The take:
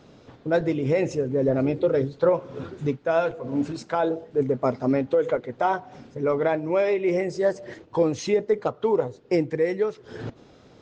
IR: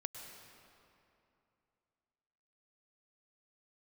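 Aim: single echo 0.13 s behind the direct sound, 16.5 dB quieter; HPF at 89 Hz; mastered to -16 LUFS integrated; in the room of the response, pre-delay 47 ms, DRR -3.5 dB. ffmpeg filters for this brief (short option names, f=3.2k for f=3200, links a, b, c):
-filter_complex "[0:a]highpass=89,aecho=1:1:130:0.15,asplit=2[a][b];[1:a]atrim=start_sample=2205,adelay=47[c];[b][c]afir=irnorm=-1:irlink=0,volume=5dB[d];[a][d]amix=inputs=2:normalize=0,volume=4dB"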